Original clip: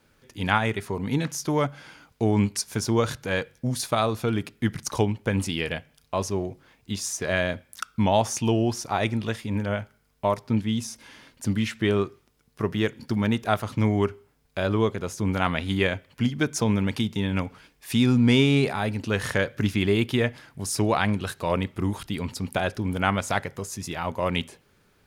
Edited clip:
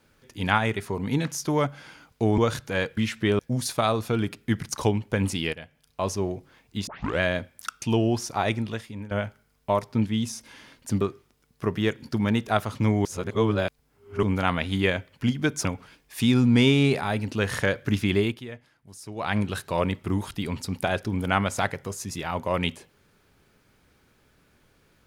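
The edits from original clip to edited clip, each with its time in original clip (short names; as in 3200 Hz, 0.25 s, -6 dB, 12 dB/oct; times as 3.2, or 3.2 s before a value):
2.38–2.94 cut
5.67–6.24 fade in, from -14.5 dB
7.01 tape start 0.33 s
7.96–8.37 cut
9.01–9.66 fade out linear, to -14 dB
11.56–11.98 move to 3.53
14.02–15.2 reverse
16.62–17.37 cut
19.9–21.11 dip -15.5 dB, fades 0.24 s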